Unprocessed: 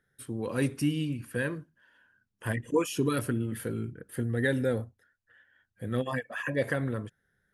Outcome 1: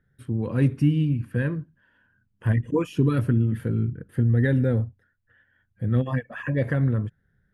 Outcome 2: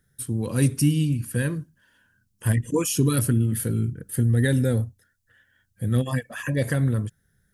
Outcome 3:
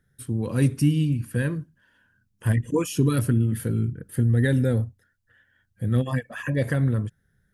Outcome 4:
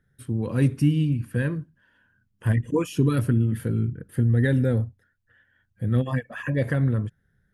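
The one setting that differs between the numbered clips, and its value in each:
tone controls, treble: -13 dB, +14 dB, +5 dB, -3 dB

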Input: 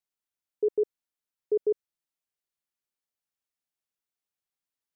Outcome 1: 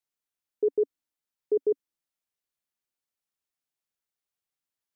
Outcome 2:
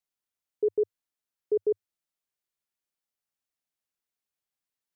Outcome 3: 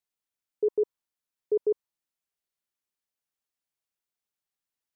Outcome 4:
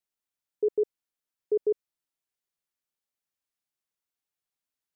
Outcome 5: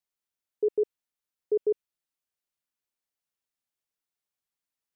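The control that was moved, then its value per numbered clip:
dynamic bell, frequency: 280 Hz, 100 Hz, 1 kHz, 7.5 kHz, 2.7 kHz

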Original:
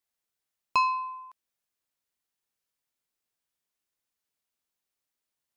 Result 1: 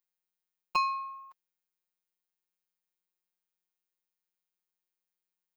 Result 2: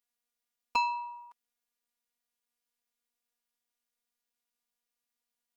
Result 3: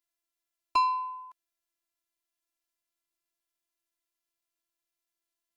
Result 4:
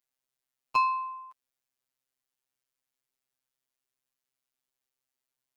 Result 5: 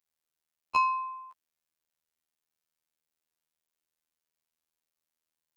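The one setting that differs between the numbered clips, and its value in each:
robot voice, frequency: 180 Hz, 240 Hz, 340 Hz, 130 Hz, 80 Hz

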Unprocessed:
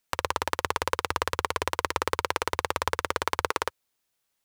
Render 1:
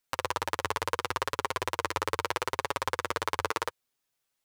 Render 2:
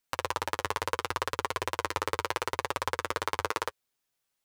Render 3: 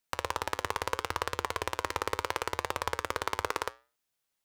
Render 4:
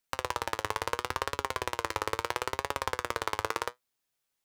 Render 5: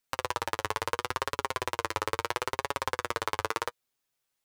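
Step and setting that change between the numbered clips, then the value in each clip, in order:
flange, regen: +1%, -22%, -86%, +65%, +25%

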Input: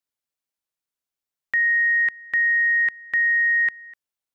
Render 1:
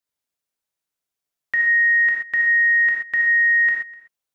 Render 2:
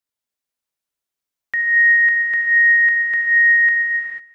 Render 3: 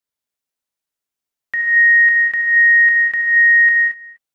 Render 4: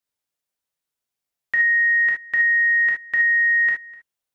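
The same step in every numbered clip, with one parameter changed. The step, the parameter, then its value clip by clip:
gated-style reverb, gate: 150 ms, 520 ms, 250 ms, 90 ms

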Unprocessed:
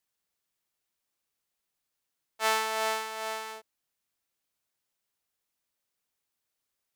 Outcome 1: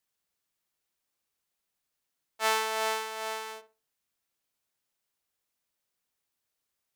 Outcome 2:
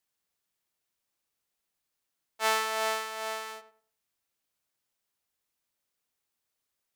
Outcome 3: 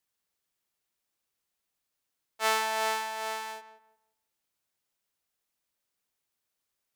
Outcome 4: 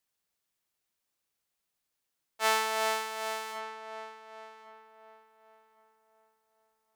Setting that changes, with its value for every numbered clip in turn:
filtered feedback delay, time: 61 ms, 97 ms, 176 ms, 1110 ms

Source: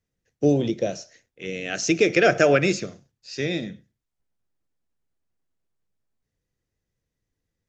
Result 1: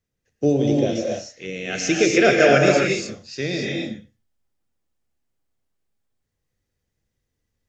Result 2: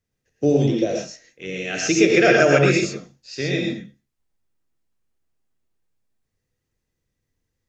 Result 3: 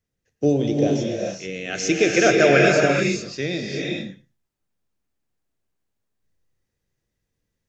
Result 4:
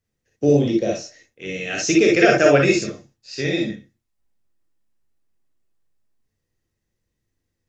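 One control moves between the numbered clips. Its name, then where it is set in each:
gated-style reverb, gate: 310 ms, 150 ms, 460 ms, 80 ms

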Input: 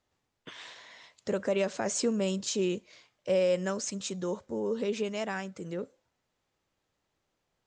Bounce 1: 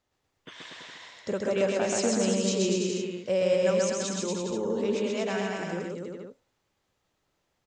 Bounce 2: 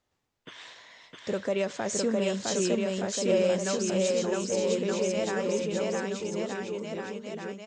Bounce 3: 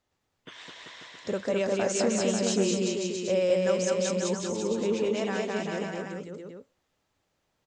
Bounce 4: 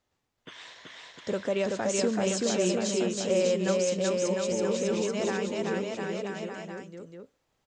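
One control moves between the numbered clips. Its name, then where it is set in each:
bouncing-ball echo, first gap: 130 ms, 660 ms, 210 ms, 380 ms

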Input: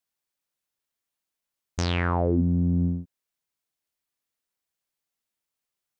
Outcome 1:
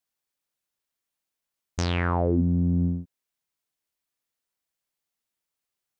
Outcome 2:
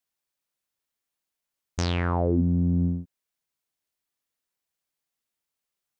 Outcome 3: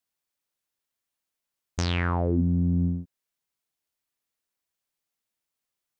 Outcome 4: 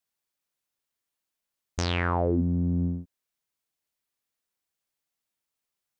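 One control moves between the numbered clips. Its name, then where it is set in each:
dynamic bell, frequency: 5.5 kHz, 2 kHz, 580 Hz, 140 Hz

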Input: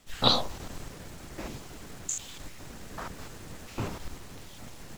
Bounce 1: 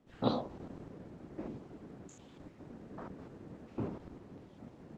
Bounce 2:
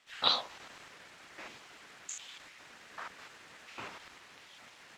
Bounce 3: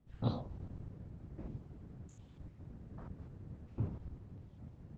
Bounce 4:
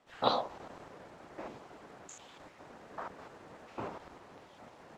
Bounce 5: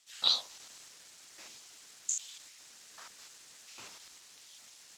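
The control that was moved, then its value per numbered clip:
band-pass filter, frequency: 280 Hz, 2.1 kHz, 100 Hz, 750 Hz, 6 kHz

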